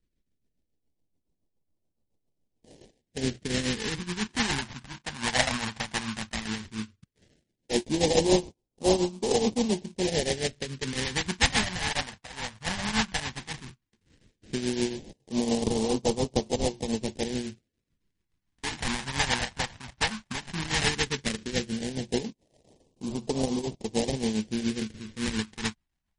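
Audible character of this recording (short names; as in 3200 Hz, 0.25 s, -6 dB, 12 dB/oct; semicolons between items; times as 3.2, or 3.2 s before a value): tremolo triangle 7.1 Hz, depth 70%; aliases and images of a low sample rate 1300 Hz, jitter 20%; phasing stages 2, 0.14 Hz, lowest notch 390–1600 Hz; MP3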